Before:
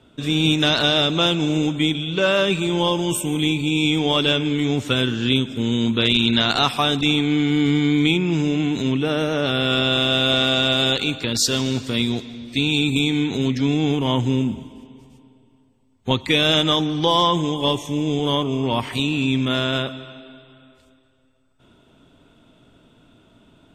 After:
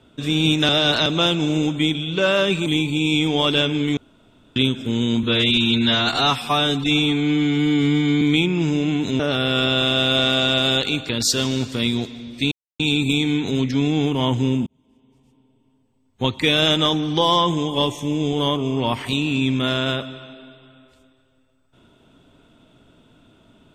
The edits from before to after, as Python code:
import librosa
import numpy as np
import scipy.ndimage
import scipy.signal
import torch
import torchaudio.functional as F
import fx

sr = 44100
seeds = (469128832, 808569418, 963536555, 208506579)

y = fx.edit(x, sr, fx.reverse_span(start_s=0.69, length_s=0.37),
    fx.cut(start_s=2.66, length_s=0.71),
    fx.room_tone_fill(start_s=4.68, length_s=0.59),
    fx.stretch_span(start_s=5.94, length_s=1.99, factor=1.5),
    fx.cut(start_s=8.91, length_s=0.43),
    fx.insert_silence(at_s=12.66, length_s=0.28),
    fx.fade_in_span(start_s=14.53, length_s=1.81), tone=tone)